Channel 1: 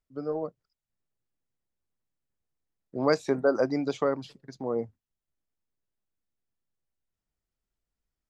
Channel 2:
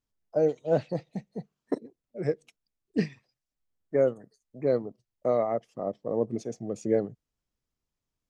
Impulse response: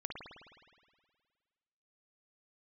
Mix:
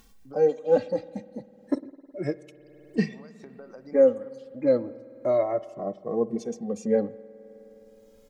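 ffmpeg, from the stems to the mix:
-filter_complex "[0:a]alimiter=limit=0.0841:level=0:latency=1:release=370,acompressor=threshold=0.02:ratio=6,adelay=150,volume=0.211,asplit=2[s0][s1];[s1]volume=0.316[s2];[1:a]aecho=1:1:3.7:0.44,asplit=2[s3][s4];[s4]adelay=2.2,afreqshift=0.31[s5];[s3][s5]amix=inputs=2:normalize=1,volume=1.41,asplit=3[s6][s7][s8];[s7]volume=0.211[s9];[s8]apad=whole_len=372579[s10];[s0][s10]sidechaincompress=threshold=0.0316:ratio=8:attack=16:release=196[s11];[2:a]atrim=start_sample=2205[s12];[s2][s9]amix=inputs=2:normalize=0[s13];[s13][s12]afir=irnorm=-1:irlink=0[s14];[s11][s6][s14]amix=inputs=3:normalize=0,acompressor=mode=upward:threshold=0.0141:ratio=2.5"

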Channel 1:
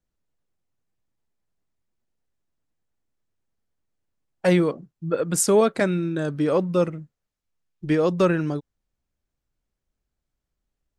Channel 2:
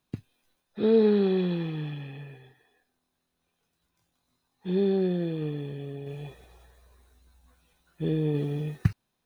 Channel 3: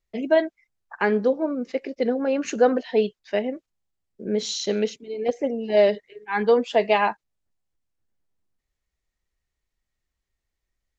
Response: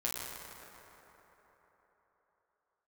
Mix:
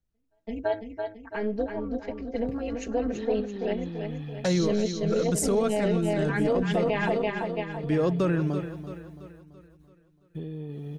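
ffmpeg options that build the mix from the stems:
-filter_complex "[0:a]equalizer=f=82:w=0.63:g=3.5,volume=0.531,asplit=3[s0][s1][s2];[s1]volume=0.224[s3];[1:a]agate=range=0.224:threshold=0.00112:ratio=16:detection=peak,acompressor=threshold=0.0251:ratio=6,adelay=2350,volume=0.596[s4];[2:a]aecho=1:1:4.4:0.89,tremolo=f=210:d=0.667,volume=0.631,asplit=2[s5][s6];[s6]volume=0.531[s7];[s2]apad=whole_len=484791[s8];[s5][s8]sidechaingate=range=0.00251:threshold=0.00562:ratio=16:detection=peak[s9];[s3][s7]amix=inputs=2:normalize=0,aecho=0:1:335|670|1005|1340|1675|2010|2345:1|0.48|0.23|0.111|0.0531|0.0255|0.0122[s10];[s0][s4][s9][s10]amix=inputs=4:normalize=0,lowshelf=f=230:g=6,alimiter=limit=0.15:level=0:latency=1:release=28"

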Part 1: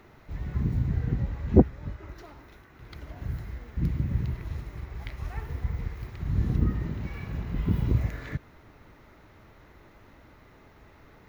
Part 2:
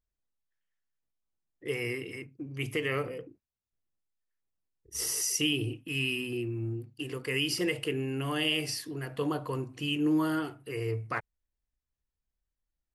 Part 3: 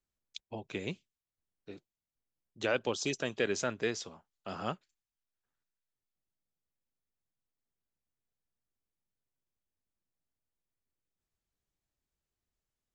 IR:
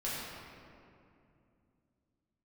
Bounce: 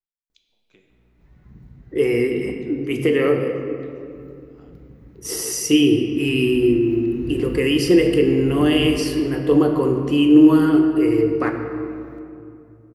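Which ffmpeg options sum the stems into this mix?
-filter_complex "[0:a]aeval=exprs='val(0)+0.00794*(sin(2*PI*60*n/s)+sin(2*PI*2*60*n/s)/2+sin(2*PI*3*60*n/s)/3+sin(2*PI*4*60*n/s)/4+sin(2*PI*5*60*n/s)/5)':c=same,adelay=900,volume=0.398,afade=t=in:st=6.07:d=0.57:silence=0.266073,asplit=2[s0][s1];[s1]volume=0.422[s2];[1:a]equalizer=f=320:t=o:w=2:g=13,adelay=300,volume=1.26,asplit=2[s3][s4];[s4]volume=0.501[s5];[2:a]acompressor=threshold=0.00891:ratio=6,aeval=exprs='val(0)*pow(10,-25*(0.5-0.5*cos(2*PI*2.6*n/s))/20)':c=same,volume=0.2,asplit=2[s6][s7];[s7]volume=0.596[s8];[3:a]atrim=start_sample=2205[s9];[s2][s5][s8]amix=inputs=3:normalize=0[s10];[s10][s9]afir=irnorm=-1:irlink=0[s11];[s0][s3][s6][s11]amix=inputs=4:normalize=0,equalizer=f=84:w=4.4:g=-14"

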